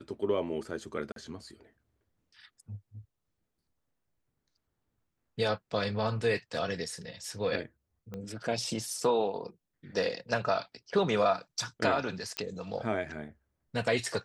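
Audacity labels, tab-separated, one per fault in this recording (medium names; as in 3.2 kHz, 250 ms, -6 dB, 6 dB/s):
1.120000	1.160000	dropout 42 ms
8.140000	8.140000	pop -27 dBFS
12.370000	12.370000	pop -18 dBFS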